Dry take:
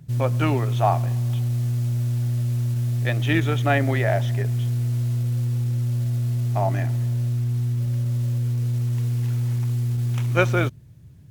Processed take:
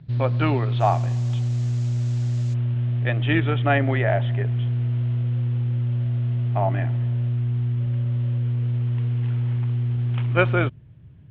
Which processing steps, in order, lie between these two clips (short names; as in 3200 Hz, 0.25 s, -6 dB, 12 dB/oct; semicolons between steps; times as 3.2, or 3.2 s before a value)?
elliptic low-pass 4200 Hz, stop band 80 dB, from 0.79 s 7300 Hz, from 2.53 s 3200 Hz; gain +1 dB